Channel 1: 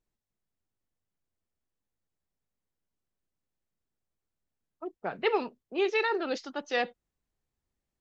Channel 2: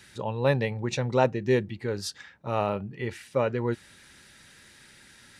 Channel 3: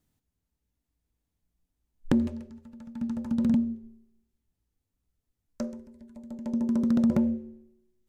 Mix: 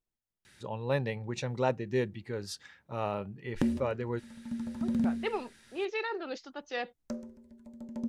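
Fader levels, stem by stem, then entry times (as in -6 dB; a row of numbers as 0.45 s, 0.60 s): -6.5 dB, -6.5 dB, -5.0 dB; 0.00 s, 0.45 s, 1.50 s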